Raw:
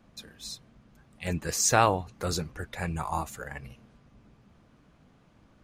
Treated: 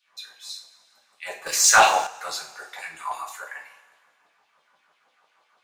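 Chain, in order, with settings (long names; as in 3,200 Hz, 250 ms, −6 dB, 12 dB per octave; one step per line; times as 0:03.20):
auto-filter high-pass saw down 6.1 Hz 660–3,900 Hz
coupled-rooms reverb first 0.38 s, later 1.9 s, from −18 dB, DRR −2.5 dB
0:01.46–0:02.07: leveller curve on the samples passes 2
level −3.5 dB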